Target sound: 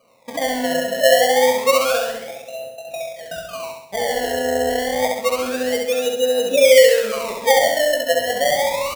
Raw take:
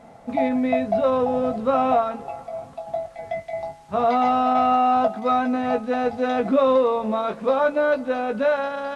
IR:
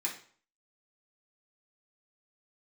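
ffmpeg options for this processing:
-filter_complex "[0:a]agate=range=-11dB:threshold=-38dB:ratio=16:detection=peak,asplit=3[a][b][c];[a]bandpass=f=530:t=q:w=8,volume=0dB[d];[b]bandpass=f=1.84k:t=q:w=8,volume=-6dB[e];[c]bandpass=f=2.48k:t=q:w=8,volume=-9dB[f];[d][e][f]amix=inputs=3:normalize=0,aemphasis=mode=reproduction:type=bsi,asplit=2[g][h];[h]acompressor=threshold=-34dB:ratio=6,volume=-2dB[i];[g][i]amix=inputs=2:normalize=0,acrusher=samples=25:mix=1:aa=0.000001:lfo=1:lforange=25:lforate=0.28,asplit=2[j][k];[k]aecho=0:1:67|134|201|268|335|402|469:0.668|0.348|0.181|0.094|0.0489|0.0254|0.0132[l];[j][l]amix=inputs=2:normalize=0,volume=4.5dB"

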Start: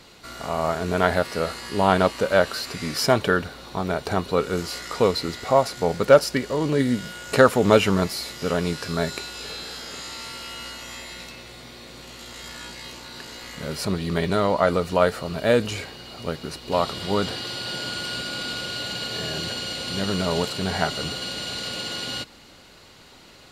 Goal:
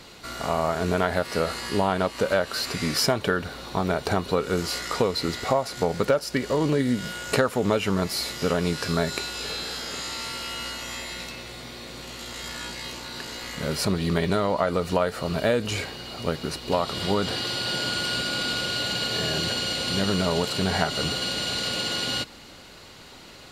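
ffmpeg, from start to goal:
-af "acompressor=threshold=-22dB:ratio=6,volume=3dB"

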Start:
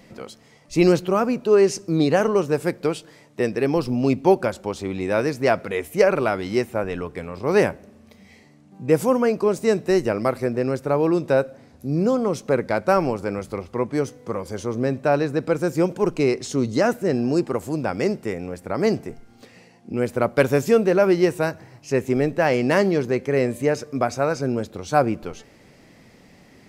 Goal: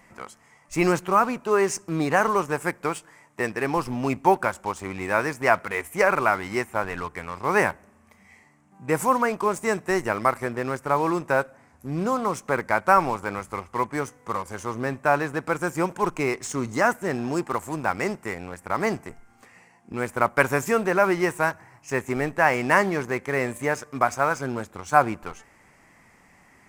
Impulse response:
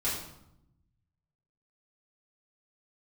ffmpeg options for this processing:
-filter_complex "[0:a]equalizer=f=125:t=o:w=1:g=-4,equalizer=f=250:t=o:w=1:g=-4,equalizer=f=500:t=o:w=1:g=-7,equalizer=f=1k:t=o:w=1:g=9,equalizer=f=2k:t=o:w=1:g=6,equalizer=f=4k:t=o:w=1:g=-12,equalizer=f=8k:t=o:w=1:g=7,asplit=2[a][b];[b]acrusher=bits=4:mix=0:aa=0.5,volume=-6dB[c];[a][c]amix=inputs=2:normalize=0,volume=-4.5dB"

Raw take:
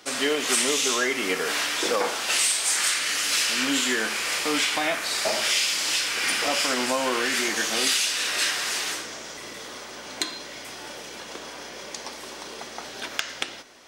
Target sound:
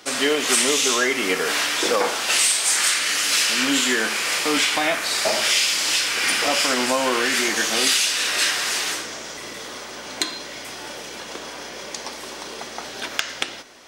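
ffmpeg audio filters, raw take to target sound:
-filter_complex "[0:a]asettb=1/sr,asplit=3[a][b][c];[a]atrim=end=2.344[d];[b]atrim=start=2.34:end=4.57,asetpts=PTS-STARTPTS,afade=t=in:d=0.004:c=qsin,afade=t=out:st=2.226:d=0.004:c=qsin,highpass=f=89:w=0.5412,highpass=f=89:w=1.3066[e];[c]atrim=start=4.566[f];[d][e]acrossfade=d=0.004:c1=hsin:c2=qsin[g];[g][f]acrossfade=d=0.004:c1=qsin:c2=hsin,volume=4dB"

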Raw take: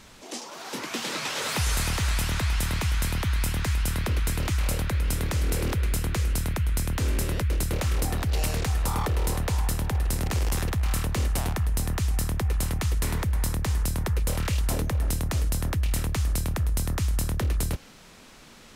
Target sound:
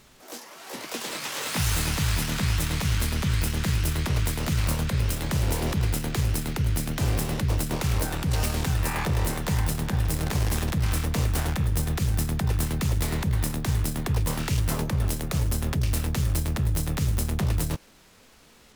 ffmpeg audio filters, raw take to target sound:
-filter_complex "[0:a]aeval=exprs='0.141*(cos(1*acos(clip(val(0)/0.141,-1,1)))-cos(1*PI/2))+0.00112*(cos(2*acos(clip(val(0)/0.141,-1,1)))-cos(2*PI/2))+0.0178*(cos(3*acos(clip(val(0)/0.141,-1,1)))-cos(3*PI/2))+0.00355*(cos(7*acos(clip(val(0)/0.141,-1,1)))-cos(7*PI/2))':c=same,asplit=2[a][b];[b]asetrate=88200,aresample=44100,atempo=0.5,volume=-2dB[c];[a][c]amix=inputs=2:normalize=0"

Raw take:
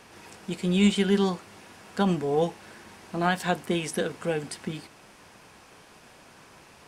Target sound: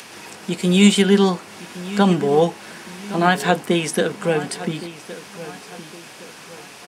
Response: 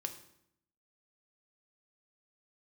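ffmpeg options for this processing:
-filter_complex "[0:a]asettb=1/sr,asplit=3[a][b][c];[a]atrim=end=0.604[d];[b]atrim=start=0.6:end=1.02,asetpts=PTS-STARTPTS,afade=t=in:d=0.004:c=qsin,afade=t=out:st=0.416:d=0.004:c=qsin,highshelf=f=6k:g=8[e];[c]atrim=start=1.016[f];[d][e]acrossfade=d=0.004:c1=hsin:c2=qsin[g];[g][f]acrossfade=d=0.004:c1=qsin:c2=hsin,acrossover=split=100|1900[h][i][j];[h]acrusher=bits=3:mix=0:aa=0.5[k];[j]acompressor=mode=upward:threshold=-44dB:ratio=2.5[l];[k][i][l]amix=inputs=3:normalize=0,asplit=2[m][n];[n]adelay=1115,lowpass=f=4.3k:p=1,volume=-15dB,asplit=2[o][p];[p]adelay=1115,lowpass=f=4.3k:p=1,volume=0.39,asplit=2[q][r];[r]adelay=1115,lowpass=f=4.3k:p=1,volume=0.39,asplit=2[s][t];[t]adelay=1115,lowpass=f=4.3k:p=1,volume=0.39[u];[m][o][q][s][u]amix=inputs=5:normalize=0,volume=8.5dB"

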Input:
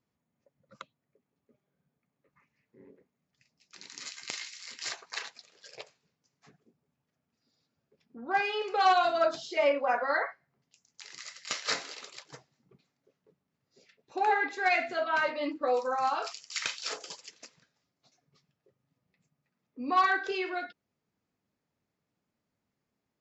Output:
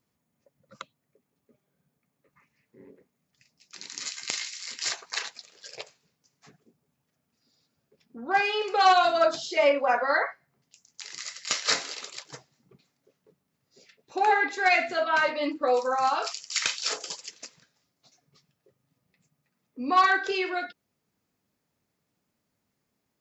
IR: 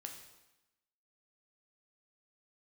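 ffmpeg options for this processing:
-af "highshelf=f=5.5k:g=7.5,volume=4dB"

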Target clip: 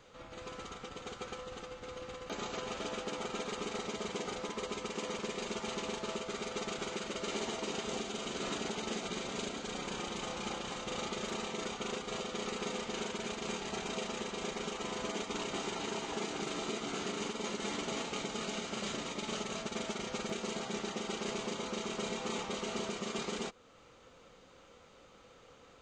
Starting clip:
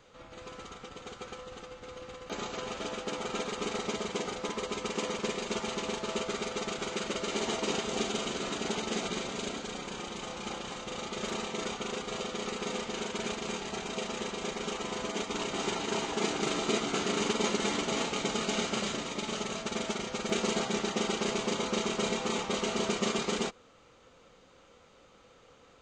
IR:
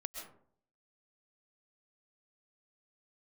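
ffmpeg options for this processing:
-af "alimiter=level_in=3dB:limit=-24dB:level=0:latency=1:release=370,volume=-3dB"

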